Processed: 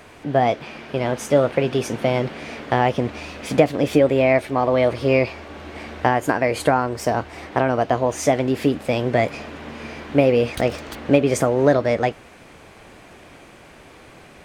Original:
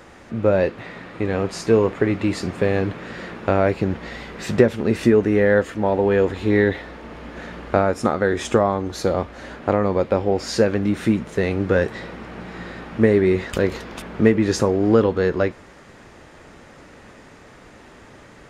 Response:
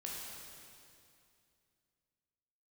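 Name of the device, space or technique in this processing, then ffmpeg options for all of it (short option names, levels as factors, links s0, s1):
nightcore: -af "asetrate=56448,aresample=44100"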